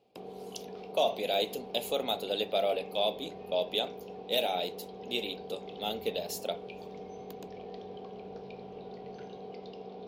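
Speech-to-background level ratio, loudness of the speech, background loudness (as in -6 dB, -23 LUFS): 12.0 dB, -33.0 LUFS, -45.0 LUFS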